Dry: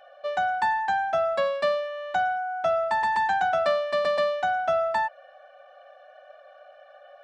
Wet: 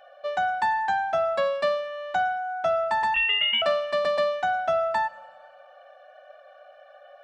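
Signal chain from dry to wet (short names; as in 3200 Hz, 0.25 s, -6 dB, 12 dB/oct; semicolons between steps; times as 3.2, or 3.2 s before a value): 3.14–3.62 inverted band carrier 3600 Hz; Schroeder reverb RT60 1.5 s, combs from 25 ms, DRR 19.5 dB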